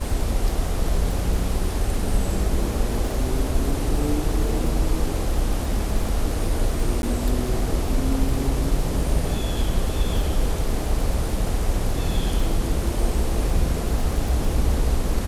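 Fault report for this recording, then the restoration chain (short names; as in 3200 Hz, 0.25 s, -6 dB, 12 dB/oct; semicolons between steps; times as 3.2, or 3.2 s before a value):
crackle 38/s -28 dBFS
7.02–7.03 gap 11 ms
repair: de-click; interpolate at 7.02, 11 ms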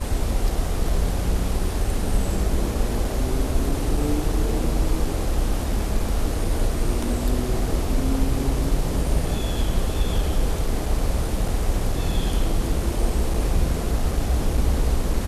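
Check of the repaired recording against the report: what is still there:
none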